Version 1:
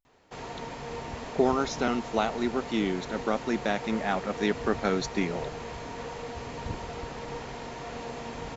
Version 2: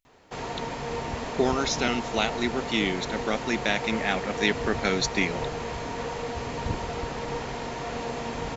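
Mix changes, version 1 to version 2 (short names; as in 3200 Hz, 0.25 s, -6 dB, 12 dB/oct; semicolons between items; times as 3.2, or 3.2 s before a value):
speech: add resonant high shelf 1600 Hz +8 dB, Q 1.5; background +5.5 dB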